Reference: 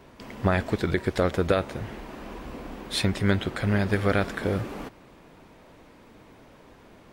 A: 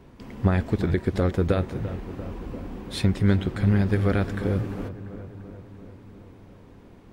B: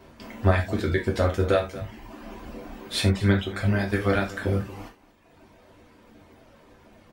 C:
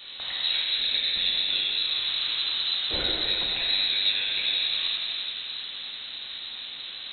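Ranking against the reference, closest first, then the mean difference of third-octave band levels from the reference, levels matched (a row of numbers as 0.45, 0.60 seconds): B, A, C; 4.0, 5.5, 14.0 decibels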